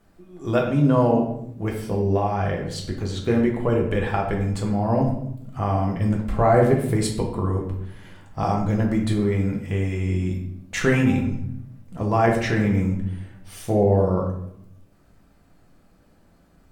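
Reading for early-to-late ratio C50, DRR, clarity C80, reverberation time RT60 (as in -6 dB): 5.5 dB, -0.5 dB, 8.5 dB, 0.75 s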